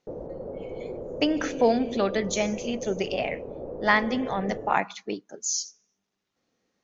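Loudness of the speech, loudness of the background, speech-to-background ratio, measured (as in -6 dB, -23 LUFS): -27.0 LUFS, -37.0 LUFS, 10.0 dB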